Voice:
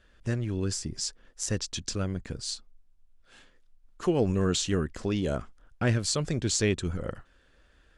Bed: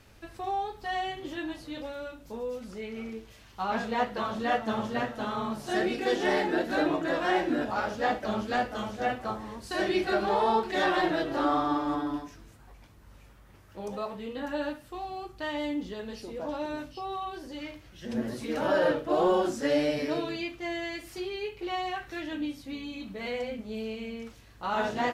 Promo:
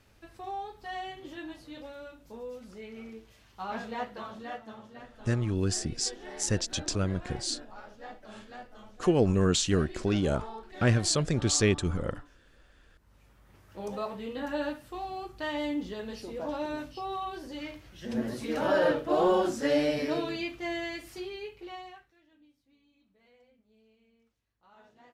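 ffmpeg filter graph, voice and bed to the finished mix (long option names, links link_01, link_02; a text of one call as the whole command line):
ffmpeg -i stem1.wav -i stem2.wav -filter_complex "[0:a]adelay=5000,volume=1.5dB[link_01];[1:a]volume=11.5dB,afade=type=out:start_time=3.84:duration=0.96:silence=0.266073,afade=type=in:start_time=12.86:duration=1:silence=0.133352,afade=type=out:start_time=20.77:duration=1.36:silence=0.0334965[link_02];[link_01][link_02]amix=inputs=2:normalize=0" out.wav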